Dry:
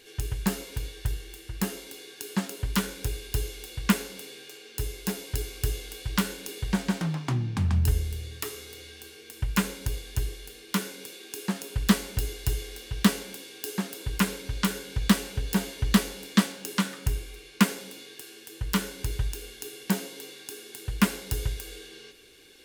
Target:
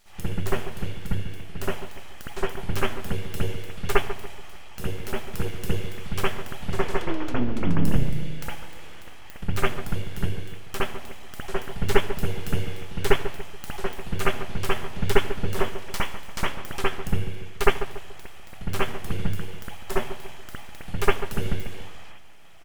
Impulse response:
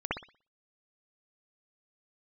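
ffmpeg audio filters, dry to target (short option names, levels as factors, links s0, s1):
-filter_complex "[0:a]asplit=3[s0][s1][s2];[s0]afade=t=out:st=15.62:d=0.02[s3];[s1]highpass=430,afade=t=in:st=15.62:d=0.02,afade=t=out:st=16.39:d=0.02[s4];[s2]afade=t=in:st=16.39:d=0.02[s5];[s3][s4][s5]amix=inputs=3:normalize=0,aeval=exprs='abs(val(0))':c=same,asplit=2[s6][s7];[s7]adelay=143,lowpass=f=1100:p=1,volume=0.316,asplit=2[s8][s9];[s9]adelay=143,lowpass=f=1100:p=1,volume=0.43,asplit=2[s10][s11];[s11]adelay=143,lowpass=f=1100:p=1,volume=0.43,asplit=2[s12][s13];[s13]adelay=143,lowpass=f=1100:p=1,volume=0.43,asplit=2[s14][s15];[s15]adelay=143,lowpass=f=1100:p=1,volume=0.43[s16];[s6][s8][s10][s12][s14][s16]amix=inputs=6:normalize=0[s17];[1:a]atrim=start_sample=2205,atrim=end_sample=3969[s18];[s17][s18]afir=irnorm=-1:irlink=0,volume=0.841"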